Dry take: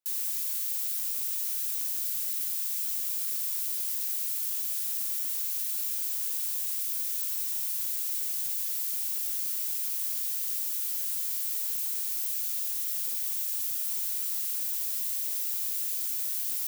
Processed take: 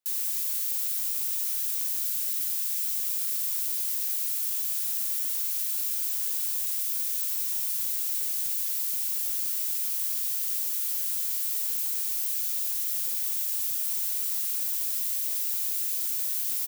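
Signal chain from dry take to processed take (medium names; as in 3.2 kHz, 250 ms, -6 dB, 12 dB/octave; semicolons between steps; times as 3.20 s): 1.49–2.96 s: high-pass 490 Hz -> 1.1 kHz 12 dB/octave; on a send: frequency-shifting echo 305 ms, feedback 37%, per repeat -54 Hz, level -13 dB; on the sum: trim +2 dB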